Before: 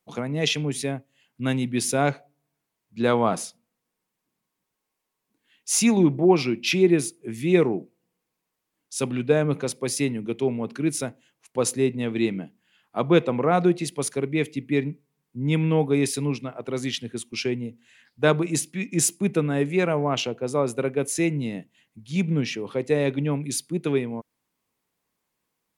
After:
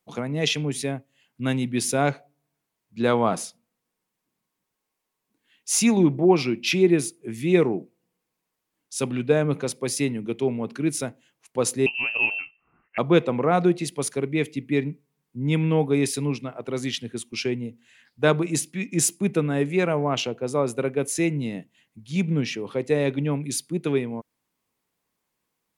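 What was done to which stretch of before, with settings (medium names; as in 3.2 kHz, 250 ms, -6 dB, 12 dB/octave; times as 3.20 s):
11.86–12.98 s: frequency inversion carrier 2.9 kHz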